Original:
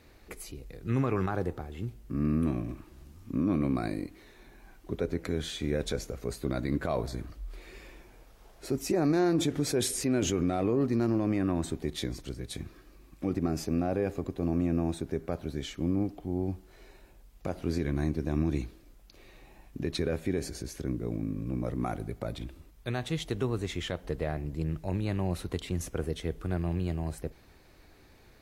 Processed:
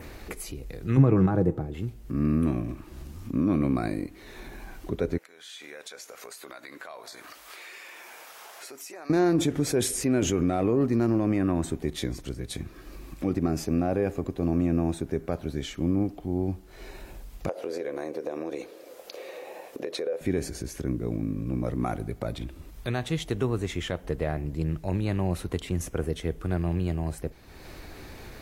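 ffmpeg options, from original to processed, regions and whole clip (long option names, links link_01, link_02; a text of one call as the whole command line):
ffmpeg -i in.wav -filter_complex "[0:a]asettb=1/sr,asplit=3[link_01][link_02][link_03];[link_01]atrim=end=0.974[link_04];[link_02]atrim=start=0.97:end=1.74,asetpts=PTS-STARTPTS,afade=type=in:duration=0.004:curve=qsin,afade=type=out:start_time=0.766:duration=0.004:curve=qsin,highpass=77,tiltshelf=frequency=650:gain=8.5,aecho=1:1:6.2:0.41,atrim=end_sample=33957[link_05];[link_03]atrim=start=1.736[link_06];[link_04][link_05]acrossfade=duration=0.004:curve1=hsin:curve2=qsin[link_07];[link_07][link_06]acrossfade=duration=0.004:curve1=qsin:curve2=hsin,asettb=1/sr,asplit=3[link_08][link_09][link_10];[link_08]atrim=end=5.184[link_11];[link_09]atrim=start=5.18:end=9.1,asetpts=PTS-STARTPTS,afade=type=in:duration=0.004:curve=qsin,afade=type=out:start_time=3.916:duration=0.004:curve=qsin,highpass=930,acompressor=threshold=-59dB:ratio=2.5:attack=3.2:release=140:knee=1:detection=peak[link_12];[link_10]atrim=start=9.096[link_13];[link_11][link_12]acrossfade=duration=0.004:curve1=hsin:curve2=qsin[link_14];[link_14][link_13]acrossfade=duration=0.004:curve1=qsin:curve2=hsin,asettb=1/sr,asplit=3[link_15][link_16][link_17];[link_15]atrim=end=17.494[link_18];[link_16]atrim=start=17.49:end=20.21,asetpts=PTS-STARTPTS,afade=type=in:duration=0.004:curve=qsin,afade=type=out:start_time=2.716:duration=0.004:curve=qsin,highpass=frequency=500:width_type=q:width=6.1,acompressor=threshold=-32dB:ratio=4:attack=3.2:release=140:knee=1:detection=peak[link_19];[link_17]atrim=start=20.206[link_20];[link_18][link_19]acrossfade=duration=0.004:curve1=hsin:curve2=qsin[link_21];[link_21][link_20]acrossfade=duration=0.004:curve1=qsin:curve2=hsin,acompressor=mode=upward:threshold=-35dB:ratio=2.5,adynamicequalizer=threshold=0.00126:dfrequency=4200:dqfactor=1.9:tfrequency=4200:tqfactor=1.9:attack=5:release=100:ratio=0.375:range=2.5:mode=cutabove:tftype=bell,volume=3.5dB" out.wav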